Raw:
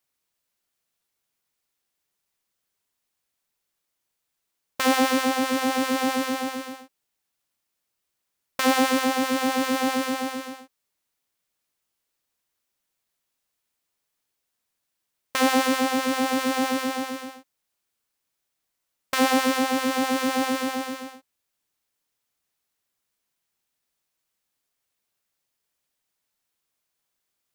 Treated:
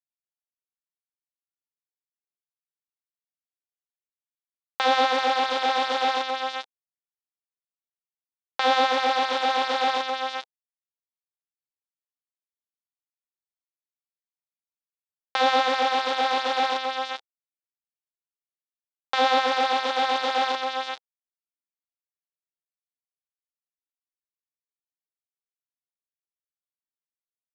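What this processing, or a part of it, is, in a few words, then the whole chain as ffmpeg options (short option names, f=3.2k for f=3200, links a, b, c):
hand-held game console: -af "acrusher=bits=3:mix=0:aa=0.000001,highpass=470,equalizer=f=490:t=q:w=4:g=5,equalizer=f=810:t=q:w=4:g=9,equalizer=f=1.4k:t=q:w=4:g=4,equalizer=f=3.6k:t=q:w=4:g=8,lowpass=f=5k:w=0.5412,lowpass=f=5k:w=1.3066,volume=-3dB"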